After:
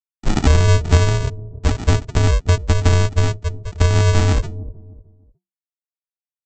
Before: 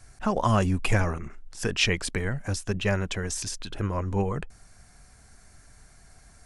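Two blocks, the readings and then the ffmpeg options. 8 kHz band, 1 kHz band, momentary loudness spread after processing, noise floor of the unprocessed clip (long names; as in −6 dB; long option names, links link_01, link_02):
+4.5 dB, +4.5 dB, 12 LU, −55 dBFS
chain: -filter_complex "[0:a]highpass=88,bass=frequency=250:gain=5,treble=frequency=4000:gain=-10,afftfilt=real='re*gte(hypot(re,im),0.0398)':imag='im*gte(hypot(re,im),0.0398)':win_size=1024:overlap=0.75,aemphasis=mode=reproduction:type=bsi,afreqshift=-190,acrossover=split=890|2500[link_01][link_02][link_03];[link_01]acompressor=threshold=-16dB:ratio=4[link_04];[link_02]acompressor=threshold=-33dB:ratio=4[link_05];[link_03]acompressor=threshold=-53dB:ratio=4[link_06];[link_04][link_05][link_06]amix=inputs=3:normalize=0,aresample=16000,acrusher=samples=30:mix=1:aa=0.000001,aresample=44100,agate=range=-33dB:threshold=-45dB:ratio=3:detection=peak,acrossover=split=600[link_07][link_08];[link_07]aecho=1:1:304|608|912:0.2|0.0579|0.0168[link_09];[link_08]crystalizer=i=0.5:c=0[link_10];[link_09][link_10]amix=inputs=2:normalize=0,volume=6dB"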